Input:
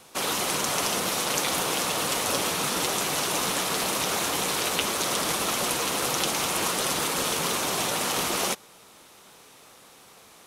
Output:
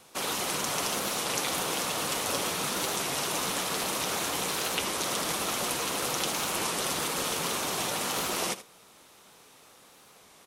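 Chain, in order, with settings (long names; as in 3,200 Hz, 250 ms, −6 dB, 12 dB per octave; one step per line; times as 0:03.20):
on a send: single-tap delay 77 ms −14.5 dB
on the sum: wow of a warped record 33 1/3 rpm, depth 100 cents
level −4 dB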